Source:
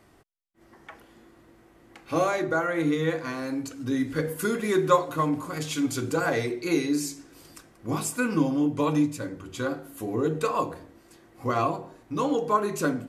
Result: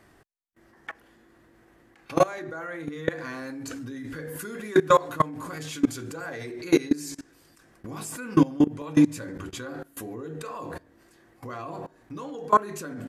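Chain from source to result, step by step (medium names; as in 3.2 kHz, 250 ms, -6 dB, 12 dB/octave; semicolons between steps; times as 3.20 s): level held to a coarse grid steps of 22 dB; peaking EQ 1.7 kHz +7.5 dB 0.28 oct; trim +7.5 dB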